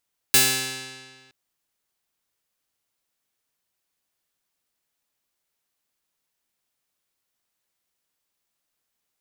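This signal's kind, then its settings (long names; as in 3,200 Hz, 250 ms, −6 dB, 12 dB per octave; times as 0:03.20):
Karplus-Strong string C3, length 0.97 s, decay 1.68 s, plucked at 0.21, bright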